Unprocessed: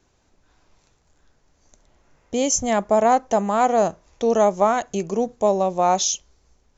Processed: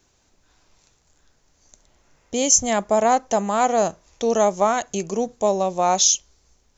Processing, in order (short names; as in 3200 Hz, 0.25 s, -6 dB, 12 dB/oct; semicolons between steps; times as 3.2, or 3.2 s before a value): high shelf 3000 Hz +9 dB; gain -1.5 dB